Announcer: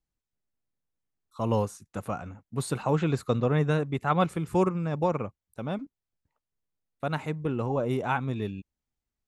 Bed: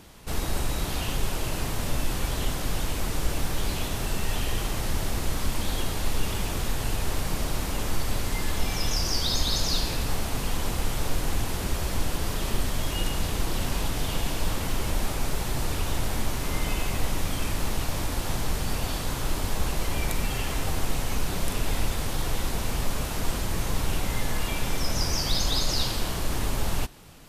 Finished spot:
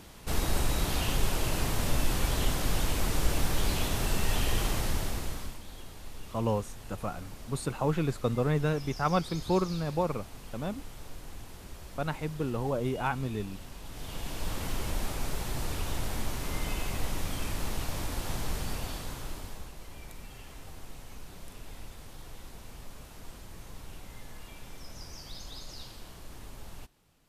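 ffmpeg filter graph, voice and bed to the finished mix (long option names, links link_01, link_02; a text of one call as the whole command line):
ffmpeg -i stem1.wav -i stem2.wav -filter_complex "[0:a]adelay=4950,volume=-3dB[link_01];[1:a]volume=11.5dB,afade=type=out:start_time=4.69:duration=0.91:silence=0.141254,afade=type=in:start_time=13.82:duration=0.83:silence=0.251189,afade=type=out:start_time=18.58:duration=1.13:silence=0.223872[link_02];[link_01][link_02]amix=inputs=2:normalize=0" out.wav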